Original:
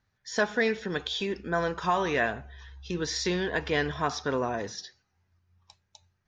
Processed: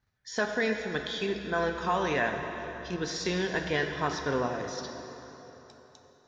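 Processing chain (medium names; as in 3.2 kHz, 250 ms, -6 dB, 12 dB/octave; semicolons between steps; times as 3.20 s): in parallel at +2 dB: level held to a coarse grid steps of 15 dB; on the sum: plate-style reverb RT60 3.8 s, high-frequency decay 0.75×, DRR 4.5 dB; trim -7 dB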